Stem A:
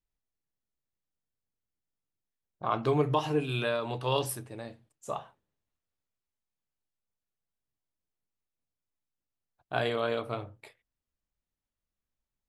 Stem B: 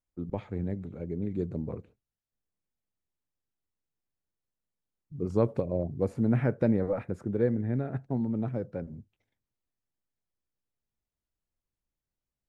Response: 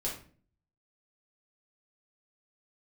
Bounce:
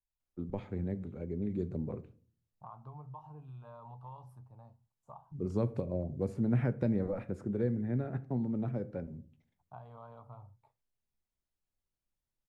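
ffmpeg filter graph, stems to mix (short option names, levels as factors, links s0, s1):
-filter_complex "[0:a]firequalizer=gain_entry='entry(130,0);entry(340,-22);entry(900,1);entry(1800,-28)':delay=0.05:min_phase=1,acompressor=threshold=0.01:ratio=4,volume=0.473[s0];[1:a]adelay=200,volume=0.631,asplit=2[s1][s2];[s2]volume=0.188[s3];[2:a]atrim=start_sample=2205[s4];[s3][s4]afir=irnorm=-1:irlink=0[s5];[s0][s1][s5]amix=inputs=3:normalize=0,highshelf=f=9900:g=-2.5,acrossover=split=250|3000[s6][s7][s8];[s7]acompressor=threshold=0.0141:ratio=2[s9];[s6][s9][s8]amix=inputs=3:normalize=0"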